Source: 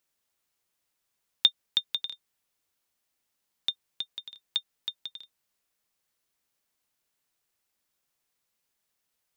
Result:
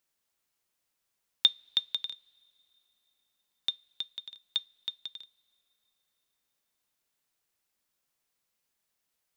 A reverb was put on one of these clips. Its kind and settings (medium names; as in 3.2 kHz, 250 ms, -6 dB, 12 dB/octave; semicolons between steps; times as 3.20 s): two-slope reverb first 0.24 s, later 3.7 s, from -22 dB, DRR 18 dB; trim -1.5 dB